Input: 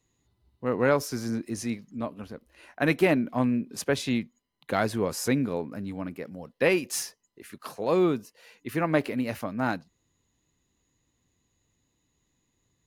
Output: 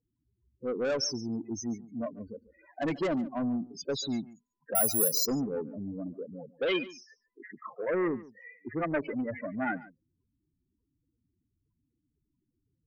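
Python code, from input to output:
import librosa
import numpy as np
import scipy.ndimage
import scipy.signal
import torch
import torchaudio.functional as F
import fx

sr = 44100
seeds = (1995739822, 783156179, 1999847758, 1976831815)

p1 = fx.env_lowpass(x, sr, base_hz=1700.0, full_db=-19.0)
p2 = fx.bass_treble(p1, sr, bass_db=-4, treble_db=12)
p3 = fx.notch(p2, sr, hz=2700.0, q=11.0)
p4 = fx.rider(p3, sr, range_db=5, speed_s=2.0)
p5 = p3 + F.gain(torch.from_numpy(p4), -1.5).numpy()
p6 = fx.spec_topn(p5, sr, count=8)
p7 = 10.0 ** (-20.0 / 20.0) * np.tanh(p6 / 10.0 ** (-20.0 / 20.0))
p8 = fx.filter_sweep_lowpass(p7, sr, from_hz=7400.0, to_hz=2000.0, start_s=5.88, end_s=7.23, q=5.1)
p9 = p8 + fx.echo_single(p8, sr, ms=142, db=-19.0, dry=0)
p10 = fx.resample_bad(p9, sr, factor=4, down='none', up='zero_stuff', at=(4.75, 5.26))
y = F.gain(torch.from_numpy(p10), -5.5).numpy()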